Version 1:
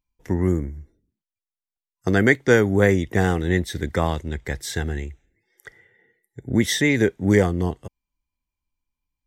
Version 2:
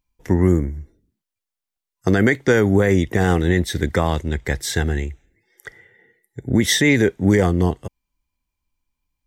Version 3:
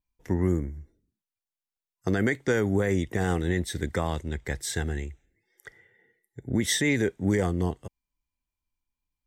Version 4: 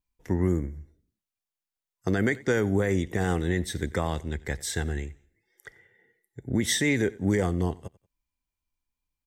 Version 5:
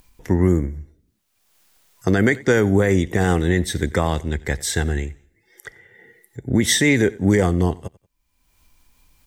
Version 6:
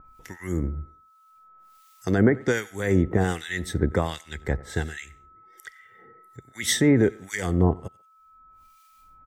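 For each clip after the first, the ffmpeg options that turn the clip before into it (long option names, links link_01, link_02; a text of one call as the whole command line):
ffmpeg -i in.wav -af "alimiter=level_in=10dB:limit=-1dB:release=50:level=0:latency=1,volume=-4.5dB" out.wav
ffmpeg -i in.wav -af "adynamicequalizer=threshold=0.00447:dfrequency=8200:dqfactor=2.7:tfrequency=8200:tqfactor=2.7:attack=5:release=100:ratio=0.375:range=3:mode=boostabove:tftype=bell,volume=-9dB" out.wav
ffmpeg -i in.wav -af "aecho=1:1:92|184:0.0794|0.0254" out.wav
ffmpeg -i in.wav -af "acompressor=mode=upward:threshold=-46dB:ratio=2.5,volume=8dB" out.wav
ffmpeg -i in.wav -filter_complex "[0:a]aeval=exprs='val(0)+0.00447*sin(2*PI*1300*n/s)':channel_layout=same,acrossover=split=1500[link_01][link_02];[link_01]aeval=exprs='val(0)*(1-1/2+1/2*cos(2*PI*1.3*n/s))':channel_layout=same[link_03];[link_02]aeval=exprs='val(0)*(1-1/2-1/2*cos(2*PI*1.3*n/s))':channel_layout=same[link_04];[link_03][link_04]amix=inputs=2:normalize=0,asplit=2[link_05][link_06];[link_06]adelay=140,highpass=300,lowpass=3400,asoftclip=type=hard:threshold=-16dB,volume=-28dB[link_07];[link_05][link_07]amix=inputs=2:normalize=0" out.wav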